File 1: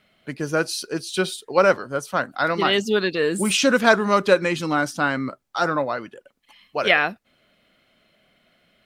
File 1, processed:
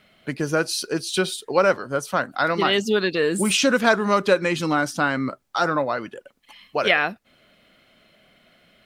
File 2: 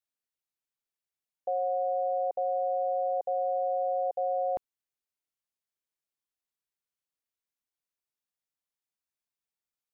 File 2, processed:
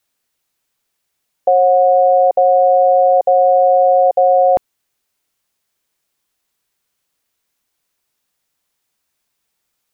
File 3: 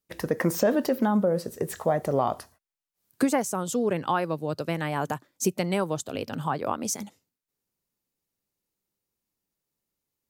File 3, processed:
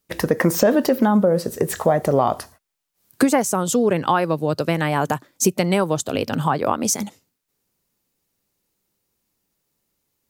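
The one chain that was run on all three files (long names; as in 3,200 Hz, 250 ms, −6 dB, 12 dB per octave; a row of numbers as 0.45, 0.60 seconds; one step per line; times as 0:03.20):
downward compressor 1.5 to 1, threshold −30 dBFS
normalise the peak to −3 dBFS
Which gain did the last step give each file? +5.0, +20.0, +10.5 decibels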